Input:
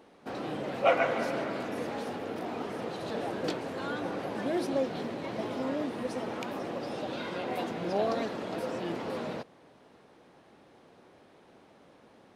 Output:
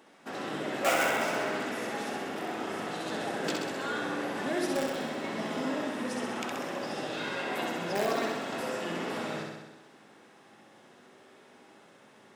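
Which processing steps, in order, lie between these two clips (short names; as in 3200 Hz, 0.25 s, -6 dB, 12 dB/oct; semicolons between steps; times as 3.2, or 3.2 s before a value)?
low shelf 100 Hz -8 dB; notch 2400 Hz, Q 10; in parallel at -9 dB: wrapped overs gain 21 dB; on the sum: flutter echo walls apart 11.1 m, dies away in 1.1 s; reverb RT60 0.40 s, pre-delay 3 ms, DRR 13 dB; gain +1 dB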